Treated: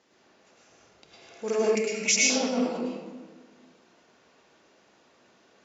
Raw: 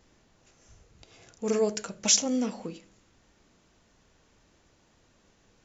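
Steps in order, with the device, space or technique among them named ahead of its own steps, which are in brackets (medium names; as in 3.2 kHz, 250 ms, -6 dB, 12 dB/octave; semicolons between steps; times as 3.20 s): supermarket ceiling speaker (band-pass 300–6000 Hz; reverberation RT60 1.5 s, pre-delay 99 ms, DRR -5 dB); 1.75–2.30 s: FFT filter 290 Hz 0 dB, 730 Hz -14 dB, 1.5 kHz -14 dB, 2.2 kHz +13 dB, 3.4 kHz -5 dB, 7.2 kHz +2 dB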